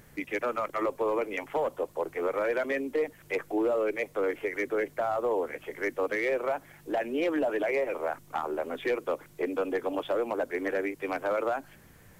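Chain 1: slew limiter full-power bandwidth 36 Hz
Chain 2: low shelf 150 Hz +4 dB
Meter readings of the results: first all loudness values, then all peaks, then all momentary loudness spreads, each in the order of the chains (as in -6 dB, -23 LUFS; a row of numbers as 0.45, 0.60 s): -31.5, -30.5 LUFS; -20.0, -19.5 dBFS; 6, 5 LU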